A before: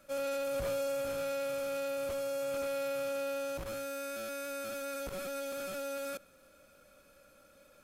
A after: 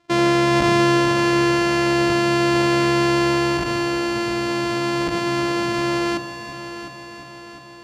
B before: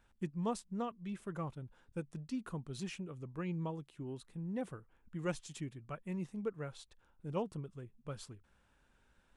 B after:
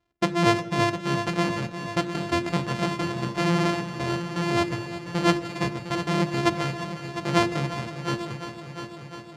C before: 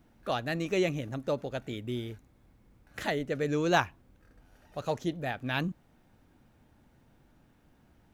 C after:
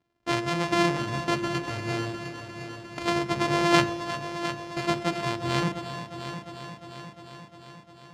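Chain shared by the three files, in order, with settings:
sample sorter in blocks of 128 samples; LPF 5500 Hz 12 dB/oct; notches 50/100/150/200/250/300/350 Hz; shoebox room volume 1500 m³, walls mixed, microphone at 0.4 m; gate -50 dBFS, range -18 dB; HPF 76 Hz; on a send: multi-head echo 0.353 s, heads first and second, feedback 64%, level -13 dB; on the sum: normalise peaks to -6 dBFS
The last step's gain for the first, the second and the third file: +19.0, +16.5, +6.0 dB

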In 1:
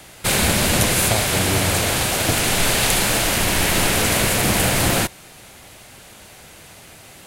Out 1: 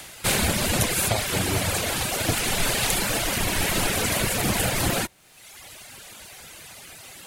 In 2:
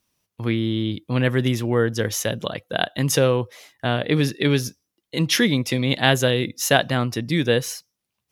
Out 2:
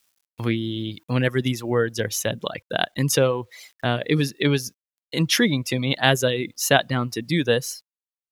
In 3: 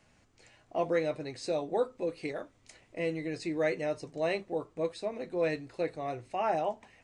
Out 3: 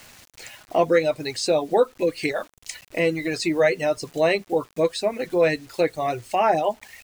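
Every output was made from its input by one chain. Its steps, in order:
reverb removal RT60 1.1 s; bit-crush 11-bit; mismatched tape noise reduction encoder only; match loudness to -23 LUFS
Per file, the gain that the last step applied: -3.0, 0.0, +11.0 dB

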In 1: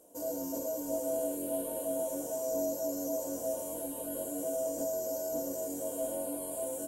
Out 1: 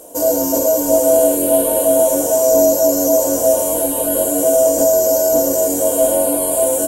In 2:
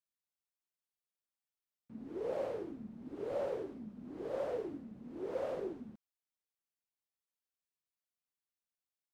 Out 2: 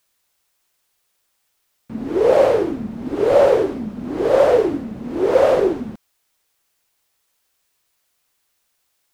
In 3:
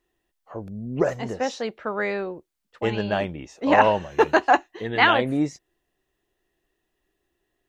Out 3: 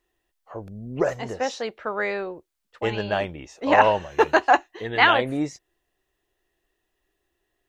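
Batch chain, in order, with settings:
bell 200 Hz -6 dB 1.5 oct; normalise peaks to -1.5 dBFS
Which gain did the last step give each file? +22.0, +25.0, +1.0 dB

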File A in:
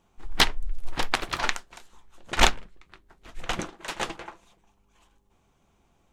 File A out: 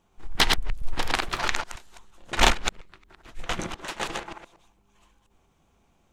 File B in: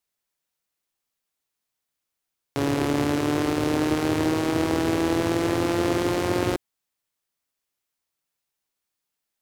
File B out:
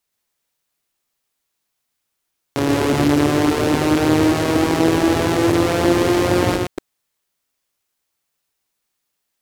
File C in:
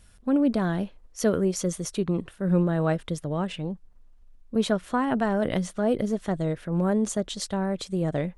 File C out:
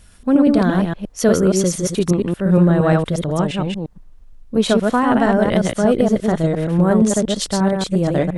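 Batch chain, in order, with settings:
reverse delay 0.117 s, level -2.5 dB; normalise peaks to -2 dBFS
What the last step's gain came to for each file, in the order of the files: -1.0, +5.5, +8.0 dB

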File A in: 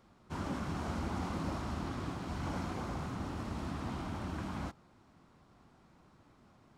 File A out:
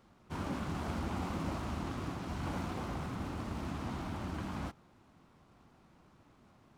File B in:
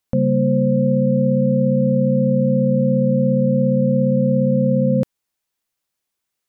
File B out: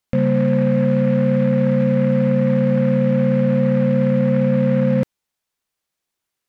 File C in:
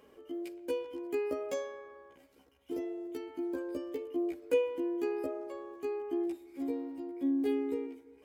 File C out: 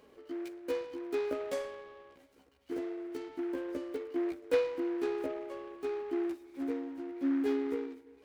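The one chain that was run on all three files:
noise-modulated delay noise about 1300 Hz, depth 0.04 ms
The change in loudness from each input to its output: 0.0, 0.0, 0.0 LU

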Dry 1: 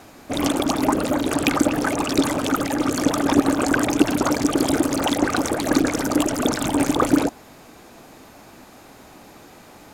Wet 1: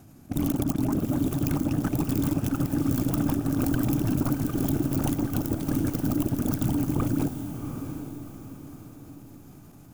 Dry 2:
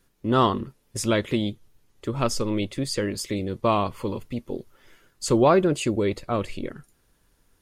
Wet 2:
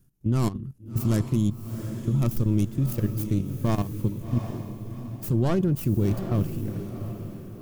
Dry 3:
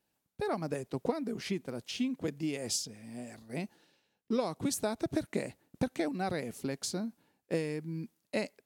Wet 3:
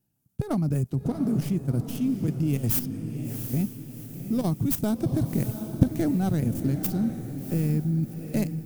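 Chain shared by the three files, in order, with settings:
tracing distortion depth 0.36 ms; ten-band EQ 125 Hz +10 dB, 500 Hz -11 dB, 1000 Hz -9 dB, 2000 Hz -12 dB, 4000 Hz -11 dB, 8000 Hz -4 dB; level quantiser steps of 13 dB; on a send: diffused feedback echo 0.733 s, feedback 42%, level -8.5 dB; on the sum: match loudness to -27 LUFS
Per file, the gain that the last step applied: +1.5, +4.5, +15.0 dB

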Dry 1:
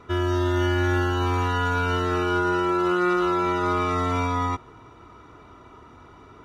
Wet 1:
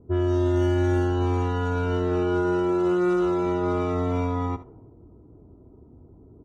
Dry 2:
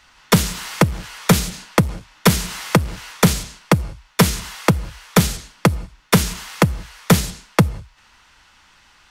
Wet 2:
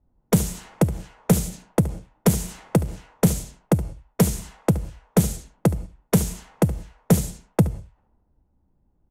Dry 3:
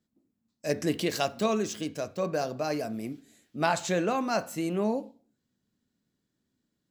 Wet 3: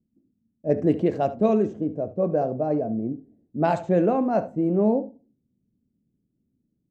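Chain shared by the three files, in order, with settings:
low-pass opened by the level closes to 300 Hz, open at -16.5 dBFS; band shelf 2400 Hz -10.5 dB 2.6 oct; echo 72 ms -16 dB; dynamic EQ 930 Hz, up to -3 dB, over -46 dBFS, Q 1.6; match loudness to -24 LUFS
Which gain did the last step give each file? +2.0, -3.0, +8.0 dB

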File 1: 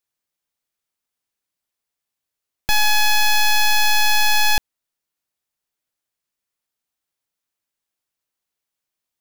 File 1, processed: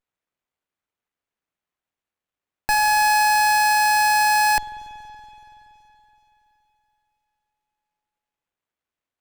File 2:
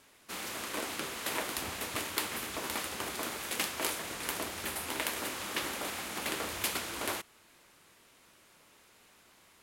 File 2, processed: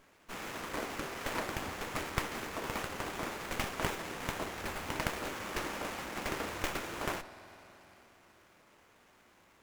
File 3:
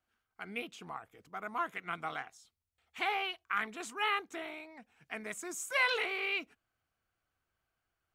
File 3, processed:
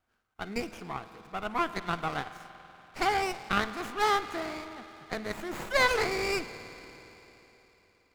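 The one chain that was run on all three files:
spring tank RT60 3.7 s, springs 47 ms, chirp 50 ms, DRR 11 dB; running maximum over 9 samples; normalise peaks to -12 dBFS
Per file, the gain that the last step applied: -2.5, 0.0, +6.5 dB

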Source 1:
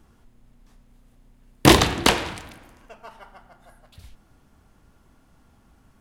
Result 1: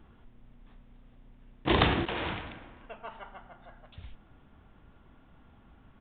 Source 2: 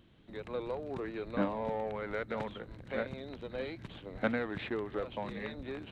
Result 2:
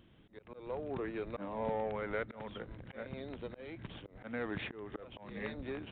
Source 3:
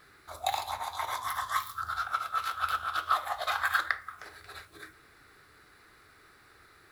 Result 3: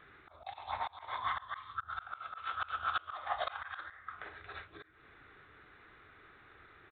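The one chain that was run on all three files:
downsampling 8000 Hz; auto swell 0.255 s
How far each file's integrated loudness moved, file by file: -12.0, -3.5, -8.5 LU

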